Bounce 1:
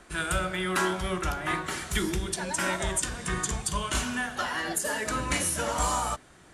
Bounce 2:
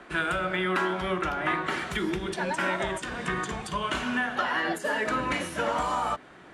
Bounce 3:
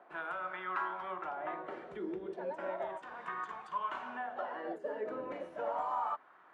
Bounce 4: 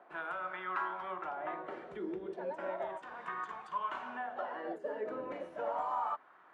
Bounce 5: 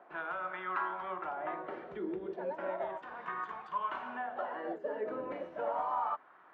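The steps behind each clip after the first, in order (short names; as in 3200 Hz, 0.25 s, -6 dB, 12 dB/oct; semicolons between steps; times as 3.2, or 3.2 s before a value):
compressor, threshold -29 dBFS, peak gain reduction 7 dB; three-band isolator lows -13 dB, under 160 Hz, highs -18 dB, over 3600 Hz; gain +6.5 dB
wah 0.35 Hz 460–1100 Hz, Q 2.4; gain -4 dB
nothing audible
air absorption 140 m; gain +2 dB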